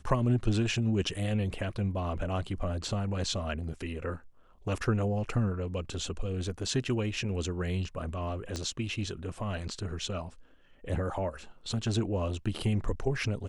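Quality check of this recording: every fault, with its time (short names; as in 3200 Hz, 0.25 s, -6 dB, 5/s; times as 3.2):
8.56 pop -23 dBFS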